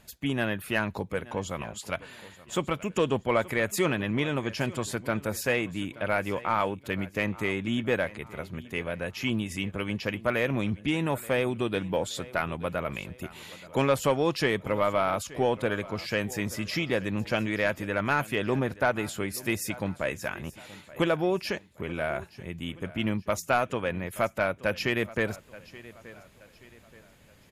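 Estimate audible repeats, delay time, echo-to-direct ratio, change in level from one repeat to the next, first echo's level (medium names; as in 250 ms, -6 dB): 3, 877 ms, -18.5 dB, -8.0 dB, -19.0 dB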